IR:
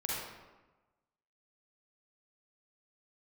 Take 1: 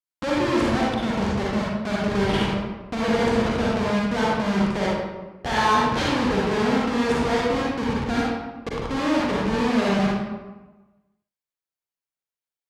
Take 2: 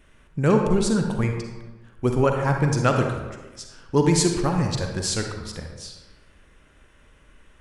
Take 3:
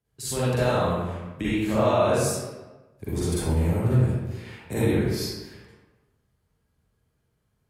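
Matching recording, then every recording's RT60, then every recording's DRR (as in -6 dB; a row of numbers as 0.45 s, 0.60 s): 1; 1.2 s, 1.2 s, 1.2 s; -6.0 dB, 3.0 dB, -10.5 dB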